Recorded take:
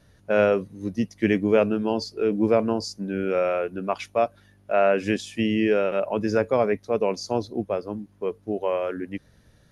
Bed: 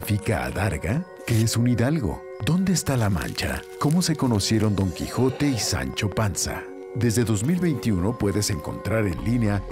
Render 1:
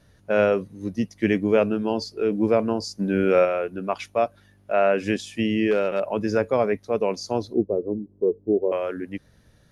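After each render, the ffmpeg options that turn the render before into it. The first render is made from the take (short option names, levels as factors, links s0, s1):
-filter_complex "[0:a]asplit=3[s0][s1][s2];[s0]afade=t=out:st=2.98:d=0.02[s3];[s1]acontrast=44,afade=t=in:st=2.98:d=0.02,afade=t=out:st=3.44:d=0.02[s4];[s2]afade=t=in:st=3.44:d=0.02[s5];[s3][s4][s5]amix=inputs=3:normalize=0,asettb=1/sr,asplit=3[s6][s7][s8];[s6]atrim=end=5.714[s9];[s7]atrim=start=5.71:end=6.13,asetpts=PTS-STARTPTS,afade=t=in:d=0.004:c=qsin,afade=t=out:st=0.416:d=0.004:c=qsin,volume=5.62,asoftclip=hard,volume=0.178[s10];[s8]atrim=start=6.126[s11];[s9][s10]acrossfade=d=0.004:c1=hsin:c2=qsin[s12];[s12][s11]acrossfade=d=0.004:c1=qsin:c2=hsin,asettb=1/sr,asplit=3[s13][s14][s15];[s13]atrim=end=7.544[s16];[s14]atrim=start=7.54:end=8.72,asetpts=PTS-STARTPTS,afade=t=in:d=0.004:c=qsin,afade=t=out:st=1.176:d=0.004:c=qsin,lowpass=f=400:t=q:w=2.8[s17];[s15]atrim=start=8.716[s18];[s16][s17]acrossfade=d=0.004:c1=hsin:c2=qsin[s19];[s19][s18]acrossfade=d=0.004:c1=qsin:c2=hsin"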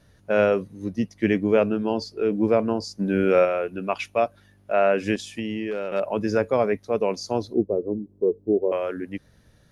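-filter_complex "[0:a]asettb=1/sr,asplit=3[s0][s1][s2];[s0]atrim=end=0.854[s3];[s1]atrim=start=0.85:end=3.07,asetpts=PTS-STARTPTS,afade=t=in:d=0.004:c=qsin,afade=t=out:st=2.216:d=0.004:c=qsin,highshelf=f=5400:g=-5[s4];[s2]atrim=start=3.066[s5];[s3][s4]acrossfade=d=0.004:c1=hsin:c2=qsin[s6];[s6][s5]acrossfade=d=0.004:c1=qsin:c2=hsin,asettb=1/sr,asplit=3[s7][s8][s9];[s7]atrim=end=3.684[s10];[s8]atrim=start=3.68:end=4.2,asetpts=PTS-STARTPTS,afade=t=in:d=0.004:c=qsin,afade=t=out:st=0.516:d=0.004:c=qsin,equalizer=f=2600:w=3.7:g=7.5[s11];[s9]atrim=start=4.196[s12];[s10][s11]acrossfade=d=0.004:c1=hsin:c2=qsin[s13];[s13][s12]acrossfade=d=0.004:c1=qsin:c2=hsin,asettb=1/sr,asplit=3[s14][s15][s16];[s14]atrim=end=5.154[s17];[s15]atrim=start=5.15:end=5.92,asetpts=PTS-STARTPTS,afade=t=in:d=0.004:c=qsin,afade=t=out:st=0.766:d=0.004:c=qsin,acompressor=threshold=0.0562:ratio=6:attack=3.2:release=140:knee=1:detection=peak[s18];[s16]atrim=start=5.916[s19];[s17][s18]acrossfade=d=0.004:c1=hsin:c2=qsin[s20];[s20][s19]acrossfade=d=0.004:c1=qsin:c2=hsin"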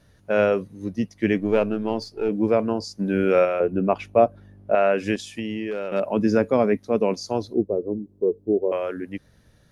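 -filter_complex "[0:a]asettb=1/sr,asplit=3[s0][s1][s2];[s0]atrim=end=1.384[s3];[s1]atrim=start=1.38:end=2.29,asetpts=PTS-STARTPTS,afade=t=in:d=0.004:c=qsin,afade=t=out:st=0.906:d=0.004:c=qsin,aeval=exprs='if(lt(val(0),0),0.708*val(0),val(0))':c=same[s4];[s2]atrim=start=2.286[s5];[s3][s4]acrossfade=d=0.004:c1=hsin:c2=qsin[s6];[s6][s5]acrossfade=d=0.004:c1=qsin:c2=hsin,asettb=1/sr,asplit=3[s7][s8][s9];[s7]atrim=end=3.604[s10];[s8]atrim=start=3.6:end=4.75,asetpts=PTS-STARTPTS,afade=t=in:d=0.004:c=qsin,afade=t=out:st=1.146:d=0.004:c=qsin,tiltshelf=f=1200:g=10[s11];[s9]atrim=start=4.746[s12];[s10][s11]acrossfade=d=0.004:c1=hsin:c2=qsin[s13];[s13][s12]acrossfade=d=0.004:c1=qsin:c2=hsin,asettb=1/sr,asplit=3[s14][s15][s16];[s14]atrim=end=5.914[s17];[s15]atrim=start=5.91:end=7.14,asetpts=PTS-STARTPTS,afade=t=in:d=0.004:c=qsin,afade=t=out:st=1.226:d=0.004:c=qsin,equalizer=f=240:w=1.5:g=8[s18];[s16]atrim=start=7.136[s19];[s17][s18]acrossfade=d=0.004:c1=hsin:c2=qsin[s20];[s20][s19]acrossfade=d=0.004:c1=qsin:c2=hsin"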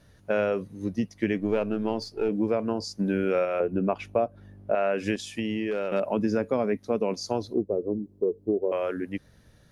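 -af "acompressor=threshold=0.0794:ratio=4"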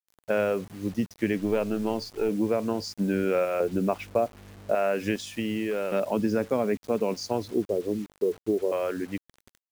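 -af "acrusher=bits=7:mix=0:aa=0.000001"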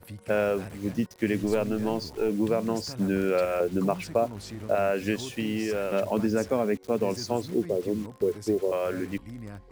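-filter_complex "[1:a]volume=0.119[s0];[0:a][s0]amix=inputs=2:normalize=0"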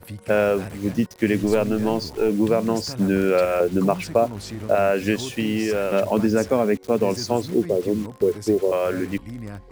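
-af "volume=2"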